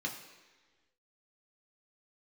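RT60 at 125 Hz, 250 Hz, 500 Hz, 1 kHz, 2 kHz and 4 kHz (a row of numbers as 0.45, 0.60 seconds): 1.2, 1.5, 1.5, 1.3, 1.4, 1.3 seconds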